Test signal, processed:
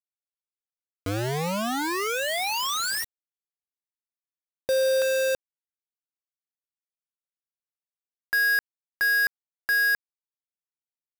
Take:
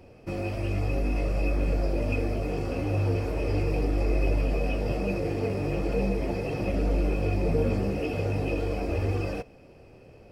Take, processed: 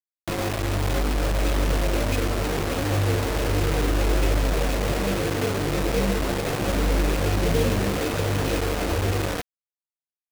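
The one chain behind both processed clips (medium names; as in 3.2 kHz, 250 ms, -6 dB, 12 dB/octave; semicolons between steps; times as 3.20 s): steep low-pass 2.3 kHz 36 dB/octave; bit crusher 5-bit; trim +3 dB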